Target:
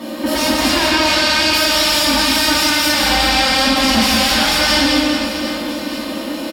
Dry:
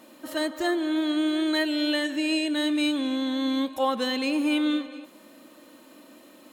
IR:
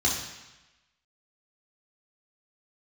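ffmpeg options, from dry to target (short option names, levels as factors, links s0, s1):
-filter_complex "[0:a]aeval=exprs='0.211*sin(PI/2*10*val(0)/0.211)':c=same,aecho=1:1:170|408|741.2|1208|1861:0.631|0.398|0.251|0.158|0.1[s0];[1:a]atrim=start_sample=2205,asetrate=33516,aresample=44100[s1];[s0][s1]afir=irnorm=-1:irlink=0,volume=0.188"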